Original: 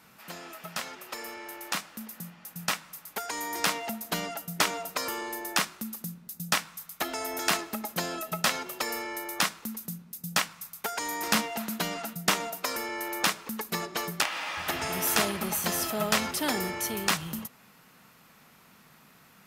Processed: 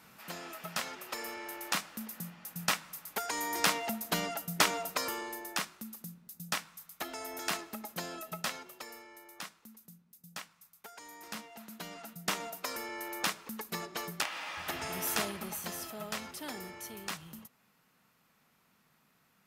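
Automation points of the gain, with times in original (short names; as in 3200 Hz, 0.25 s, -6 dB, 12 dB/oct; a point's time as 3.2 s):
4.89 s -1 dB
5.56 s -8 dB
8.32 s -8 dB
9.07 s -17.5 dB
11.44 s -17.5 dB
12.46 s -6.5 dB
15.09 s -6.5 dB
16.01 s -13 dB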